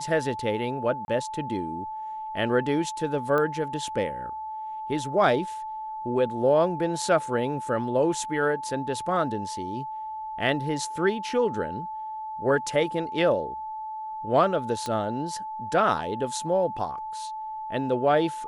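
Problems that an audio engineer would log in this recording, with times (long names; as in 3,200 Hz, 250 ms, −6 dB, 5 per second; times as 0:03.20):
whistle 870 Hz −32 dBFS
0:01.05–0:01.08: drop-out 31 ms
0:03.38: click −16 dBFS
0:14.86: click −17 dBFS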